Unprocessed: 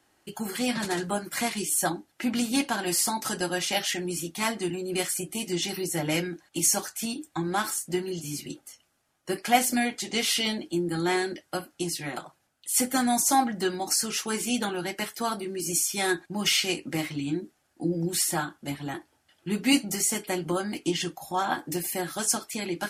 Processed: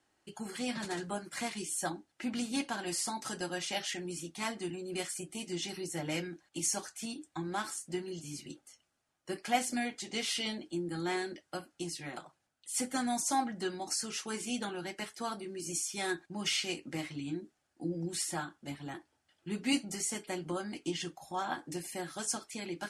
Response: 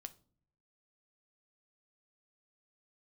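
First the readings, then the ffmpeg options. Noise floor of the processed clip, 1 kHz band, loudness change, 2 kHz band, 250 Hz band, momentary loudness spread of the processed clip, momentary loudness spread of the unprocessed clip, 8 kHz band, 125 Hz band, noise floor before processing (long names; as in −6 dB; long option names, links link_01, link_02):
−79 dBFS, −8.5 dB, −9.0 dB, −8.5 dB, −8.5 dB, 10 LU, 11 LU, −9.5 dB, −8.5 dB, −70 dBFS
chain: -af "lowpass=frequency=10000:width=0.5412,lowpass=frequency=10000:width=1.3066,volume=-8.5dB"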